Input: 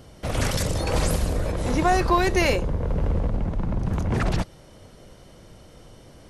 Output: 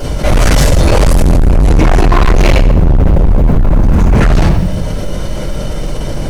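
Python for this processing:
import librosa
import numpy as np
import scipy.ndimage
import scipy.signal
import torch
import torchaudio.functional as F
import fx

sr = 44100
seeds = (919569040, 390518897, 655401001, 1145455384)

p1 = fx.rider(x, sr, range_db=10, speed_s=0.5)
p2 = x + F.gain(torch.from_numpy(p1), -2.5).numpy()
p3 = fx.low_shelf(p2, sr, hz=180.0, db=9.0, at=(1.12, 2.99))
p4 = fx.room_shoebox(p3, sr, seeds[0], volume_m3=84.0, walls='mixed', distance_m=4.4)
p5 = fx.quant_companded(p4, sr, bits=8)
p6 = p5 + fx.echo_feedback(p5, sr, ms=87, feedback_pct=54, wet_db=-17.5, dry=0)
p7 = fx.env_flatten(p6, sr, amount_pct=50)
y = F.gain(torch.from_numpy(p7), -6.0).numpy()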